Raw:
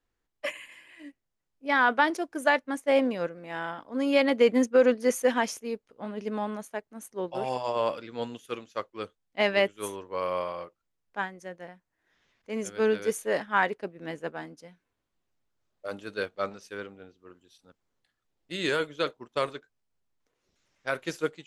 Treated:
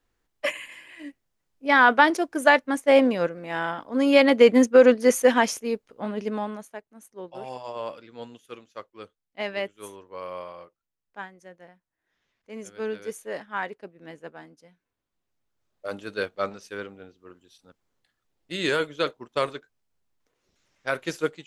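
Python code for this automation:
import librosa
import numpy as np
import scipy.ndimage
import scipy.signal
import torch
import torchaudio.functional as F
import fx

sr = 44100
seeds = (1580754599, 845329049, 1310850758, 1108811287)

y = fx.gain(x, sr, db=fx.line((6.14, 6.0), (6.89, -6.0), (14.6, -6.0), (15.89, 3.0)))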